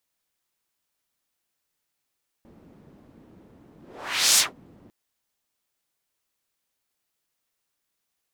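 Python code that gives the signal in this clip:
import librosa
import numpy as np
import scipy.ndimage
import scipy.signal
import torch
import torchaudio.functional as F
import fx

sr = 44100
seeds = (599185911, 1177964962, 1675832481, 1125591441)

y = fx.whoosh(sr, seeds[0], length_s=2.45, peak_s=1.93, rise_s=0.62, fall_s=0.17, ends_hz=240.0, peak_hz=6900.0, q=1.3, swell_db=35.5)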